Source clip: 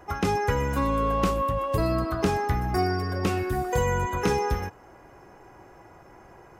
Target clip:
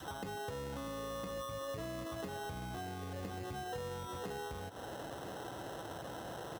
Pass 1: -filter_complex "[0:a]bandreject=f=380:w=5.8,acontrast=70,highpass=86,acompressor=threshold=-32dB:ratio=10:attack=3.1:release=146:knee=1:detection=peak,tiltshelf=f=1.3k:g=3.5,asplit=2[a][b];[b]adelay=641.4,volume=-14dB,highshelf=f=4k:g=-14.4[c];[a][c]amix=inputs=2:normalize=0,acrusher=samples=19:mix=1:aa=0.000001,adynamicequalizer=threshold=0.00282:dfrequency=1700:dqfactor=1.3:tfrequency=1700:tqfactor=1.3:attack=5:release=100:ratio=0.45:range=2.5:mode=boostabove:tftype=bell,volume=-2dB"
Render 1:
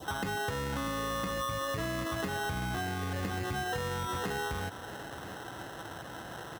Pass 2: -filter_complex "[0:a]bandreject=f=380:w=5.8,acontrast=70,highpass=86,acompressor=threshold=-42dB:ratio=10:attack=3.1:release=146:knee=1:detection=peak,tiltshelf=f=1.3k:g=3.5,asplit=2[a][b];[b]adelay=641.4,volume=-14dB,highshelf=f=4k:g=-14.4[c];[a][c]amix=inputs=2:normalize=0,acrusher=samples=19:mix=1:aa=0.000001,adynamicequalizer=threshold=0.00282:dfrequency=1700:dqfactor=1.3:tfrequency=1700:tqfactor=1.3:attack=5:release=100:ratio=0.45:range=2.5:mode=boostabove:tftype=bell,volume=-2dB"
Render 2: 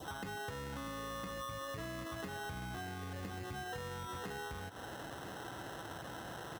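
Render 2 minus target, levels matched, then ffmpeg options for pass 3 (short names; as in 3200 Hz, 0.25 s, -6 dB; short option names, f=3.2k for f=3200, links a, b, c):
2000 Hz band +4.5 dB
-filter_complex "[0:a]bandreject=f=380:w=5.8,acontrast=70,highpass=86,acompressor=threshold=-42dB:ratio=10:attack=3.1:release=146:knee=1:detection=peak,tiltshelf=f=1.3k:g=3.5,asplit=2[a][b];[b]adelay=641.4,volume=-14dB,highshelf=f=4k:g=-14.4[c];[a][c]amix=inputs=2:normalize=0,acrusher=samples=19:mix=1:aa=0.000001,adynamicequalizer=threshold=0.00282:dfrequency=540:dqfactor=1.3:tfrequency=540:tqfactor=1.3:attack=5:release=100:ratio=0.45:range=2.5:mode=boostabove:tftype=bell,volume=-2dB"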